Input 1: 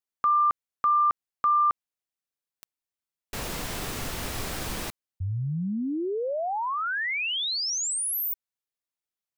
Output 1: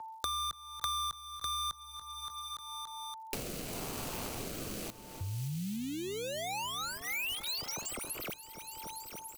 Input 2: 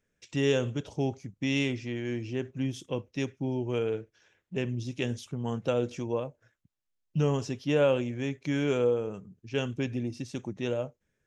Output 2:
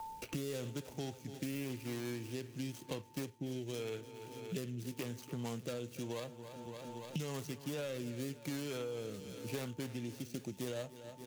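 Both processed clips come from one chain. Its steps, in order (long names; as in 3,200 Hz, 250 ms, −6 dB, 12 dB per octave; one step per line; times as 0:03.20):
running median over 25 samples
brickwall limiter −23.5 dBFS
first-order pre-emphasis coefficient 0.9
steady tone 890 Hz −76 dBFS
soft clipping −31 dBFS
rotating-speaker cabinet horn 0.9 Hz
repeating echo 286 ms, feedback 59%, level −18 dB
multiband upward and downward compressor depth 100%
level +11.5 dB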